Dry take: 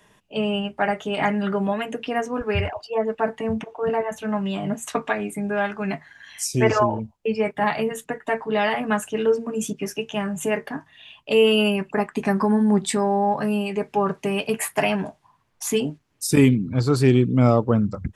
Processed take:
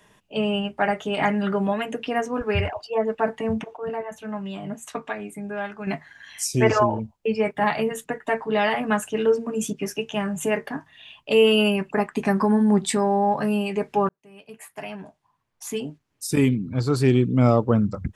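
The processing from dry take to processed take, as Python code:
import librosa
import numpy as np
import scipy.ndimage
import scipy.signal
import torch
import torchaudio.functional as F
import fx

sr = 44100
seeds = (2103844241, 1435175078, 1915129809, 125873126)

y = fx.edit(x, sr, fx.clip_gain(start_s=3.77, length_s=2.1, db=-6.5),
    fx.fade_in_span(start_s=14.09, length_s=3.69), tone=tone)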